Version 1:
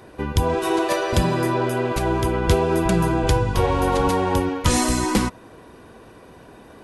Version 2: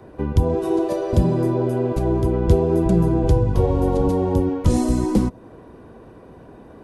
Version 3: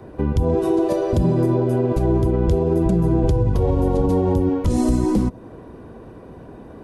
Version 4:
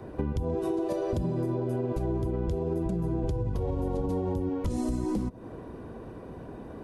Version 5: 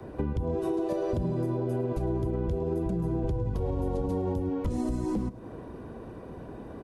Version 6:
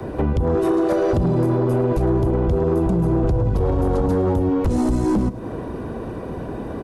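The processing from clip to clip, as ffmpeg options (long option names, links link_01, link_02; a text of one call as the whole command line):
ffmpeg -i in.wav -filter_complex "[0:a]tiltshelf=frequency=1400:gain=7.5,acrossover=split=270|730|3600[link_01][link_02][link_03][link_04];[link_03]acompressor=threshold=-36dB:ratio=6[link_05];[link_01][link_02][link_05][link_04]amix=inputs=4:normalize=0,volume=-4dB" out.wav
ffmpeg -i in.wav -af "lowshelf=frequency=410:gain=3.5,alimiter=limit=-11.5dB:level=0:latency=1:release=63,volume=1.5dB" out.wav
ffmpeg -i in.wav -af "acompressor=threshold=-24dB:ratio=6,volume=-2.5dB" out.wav
ffmpeg -i in.wav -filter_complex "[0:a]acrossover=split=220|630|3000[link_01][link_02][link_03][link_04];[link_04]alimiter=level_in=21.5dB:limit=-24dB:level=0:latency=1:release=167,volume=-21.5dB[link_05];[link_01][link_02][link_03][link_05]amix=inputs=4:normalize=0,aecho=1:1:107:0.126" out.wav
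ffmpeg -i in.wav -af "aeval=exprs='0.126*sin(PI/2*1.78*val(0)/0.126)':channel_layout=same,volume=4dB" out.wav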